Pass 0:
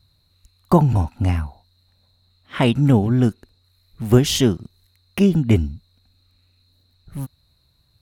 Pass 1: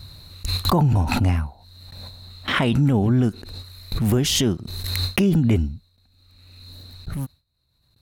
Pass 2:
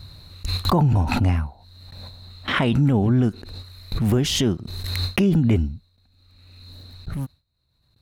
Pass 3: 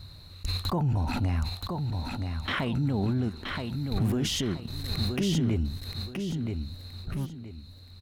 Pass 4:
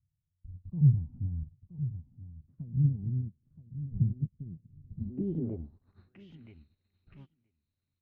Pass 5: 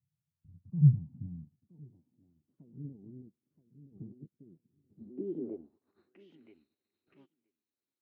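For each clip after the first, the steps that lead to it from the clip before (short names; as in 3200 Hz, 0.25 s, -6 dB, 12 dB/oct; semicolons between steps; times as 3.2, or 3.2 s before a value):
gate with hold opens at -49 dBFS; limiter -11 dBFS, peak gain reduction 8.5 dB; backwards sustainer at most 31 dB/s
bell 15000 Hz -7 dB 1.6 oct
limiter -16.5 dBFS, peak gain reduction 9.5 dB; on a send: feedback echo 0.974 s, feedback 30%, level -5 dB; on the sum: gain -4 dB
low-pass sweep 150 Hz -> 2500 Hz, 4.87–6.27; multi-head echo 0.232 s, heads first and third, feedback 56%, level -23.5 dB; upward expander 2.5:1, over -42 dBFS
high-pass sweep 150 Hz -> 340 Hz, 1.22–1.91; gain -6 dB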